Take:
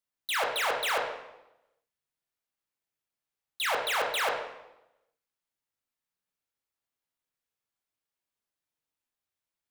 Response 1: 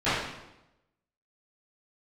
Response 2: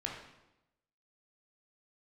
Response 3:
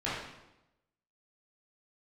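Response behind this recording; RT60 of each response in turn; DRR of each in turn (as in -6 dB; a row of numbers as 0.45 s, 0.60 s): 2; 0.95 s, 0.95 s, 0.95 s; -19.0 dB, -1.5 dB, -10.5 dB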